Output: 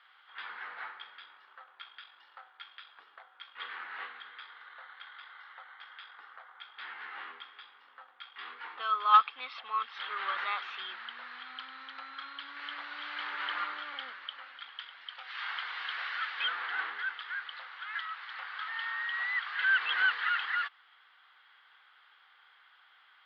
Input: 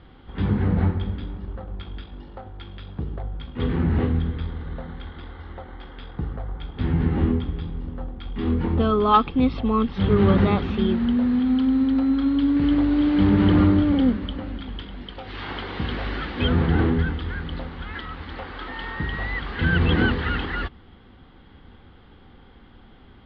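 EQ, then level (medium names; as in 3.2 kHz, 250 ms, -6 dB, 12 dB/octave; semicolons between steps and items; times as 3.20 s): ladder high-pass 1.1 kHz, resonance 35%; +3.0 dB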